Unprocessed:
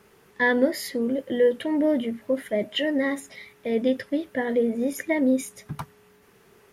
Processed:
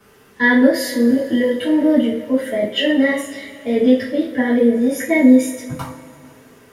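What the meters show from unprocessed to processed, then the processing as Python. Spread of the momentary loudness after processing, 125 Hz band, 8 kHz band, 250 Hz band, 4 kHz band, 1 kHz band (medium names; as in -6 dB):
14 LU, no reading, +7.5 dB, +11.0 dB, +8.0 dB, +6.0 dB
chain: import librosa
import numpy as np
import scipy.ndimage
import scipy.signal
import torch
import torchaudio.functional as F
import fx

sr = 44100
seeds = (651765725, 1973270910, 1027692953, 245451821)

y = fx.wow_flutter(x, sr, seeds[0], rate_hz=2.1, depth_cents=24.0)
y = fx.rev_double_slope(y, sr, seeds[1], early_s=0.38, late_s=3.0, knee_db=-21, drr_db=-9.0)
y = F.gain(torch.from_numpy(y), -2.0).numpy()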